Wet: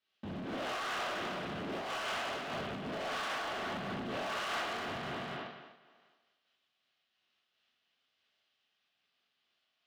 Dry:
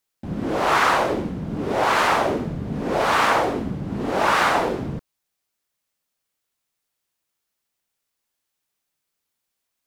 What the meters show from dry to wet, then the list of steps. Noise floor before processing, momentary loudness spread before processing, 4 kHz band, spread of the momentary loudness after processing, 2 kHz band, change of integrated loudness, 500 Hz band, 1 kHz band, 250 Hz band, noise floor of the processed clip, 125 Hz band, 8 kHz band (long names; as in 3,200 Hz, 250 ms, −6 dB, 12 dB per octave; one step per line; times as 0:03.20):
−80 dBFS, 11 LU, −10.0 dB, 6 LU, −14.5 dB, −16.5 dB, −16.5 dB, −17.5 dB, −16.0 dB, −82 dBFS, −17.0 dB, −14.5 dB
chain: loudspeaker in its box 110–4,100 Hz, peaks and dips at 130 Hz −5 dB, 300 Hz −5 dB, 480 Hz −4 dB, 940 Hz −9 dB, 2,100 Hz −3 dB, 3,000 Hz +5 dB
on a send: feedback echo with a high-pass in the loop 247 ms, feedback 32%, high-pass 190 Hz, level −6 dB
on the sum: reverb whose tail is shaped and stops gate 170 ms flat, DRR −7 dB
downward compressor 8 to 1, threshold −28 dBFS, peak gain reduction 18.5 dB
hard clipping −32 dBFS, distortion −8 dB
low-shelf EQ 260 Hz −6 dB
amplitude modulation by smooth noise, depth 60%